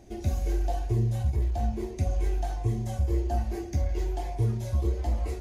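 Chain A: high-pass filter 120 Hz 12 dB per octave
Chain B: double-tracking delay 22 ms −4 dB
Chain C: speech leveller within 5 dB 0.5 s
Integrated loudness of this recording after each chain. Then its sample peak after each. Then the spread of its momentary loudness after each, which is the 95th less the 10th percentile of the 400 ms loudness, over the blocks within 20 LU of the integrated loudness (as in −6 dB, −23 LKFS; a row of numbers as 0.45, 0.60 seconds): −34.5, −29.0, −29.5 LKFS; −19.0, −15.0, −15.0 dBFS; 6, 4, 2 LU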